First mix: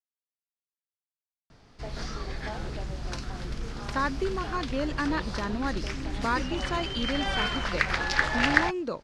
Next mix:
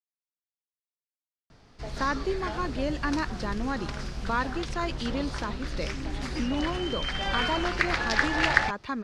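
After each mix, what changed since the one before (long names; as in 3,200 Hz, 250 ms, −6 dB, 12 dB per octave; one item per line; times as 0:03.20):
speech: entry −1.95 s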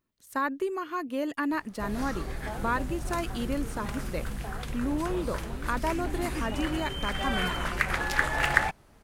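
speech: entry −1.65 s
master: remove low-pass with resonance 5,000 Hz, resonance Q 2.4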